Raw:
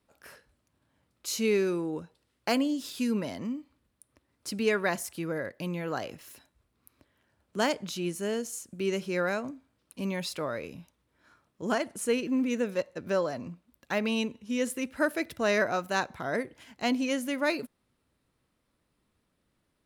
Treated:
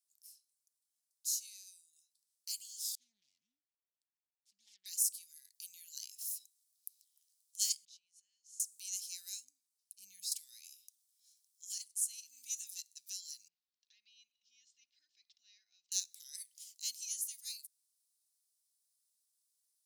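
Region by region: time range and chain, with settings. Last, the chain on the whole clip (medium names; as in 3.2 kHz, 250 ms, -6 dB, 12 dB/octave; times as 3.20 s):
2.95–4.86 s: self-modulated delay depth 0.82 ms + low-pass 1 kHz + bass shelf 410 Hz +3.5 dB
7.85–8.60 s: low-pass 1.8 kHz + peaking EQ 290 Hz -8 dB 1.3 oct + compression, threshold -50 dBFS
9.44–10.32 s: tilt shelf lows +10 dB, about 1.1 kHz + band-stop 3.4 kHz, Q 14
13.48–15.92 s: comb 2.8 ms, depth 44% + compression 2:1, threshold -48 dBFS + Gaussian low-pass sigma 2.6 samples
whole clip: inverse Chebyshev high-pass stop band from 1.3 kHz, stop band 70 dB; gain riding within 5 dB 0.5 s; trim +6 dB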